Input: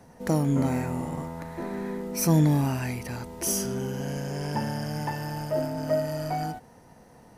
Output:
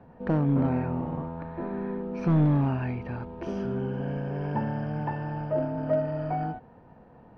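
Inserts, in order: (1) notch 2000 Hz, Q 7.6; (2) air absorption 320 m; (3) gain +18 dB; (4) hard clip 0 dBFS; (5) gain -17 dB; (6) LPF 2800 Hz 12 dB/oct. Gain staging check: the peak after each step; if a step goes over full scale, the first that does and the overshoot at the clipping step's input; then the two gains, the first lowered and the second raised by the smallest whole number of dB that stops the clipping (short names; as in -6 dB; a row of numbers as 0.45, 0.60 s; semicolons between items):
-9.5, -10.0, +8.0, 0.0, -17.0, -17.0 dBFS; step 3, 8.0 dB; step 3 +10 dB, step 5 -9 dB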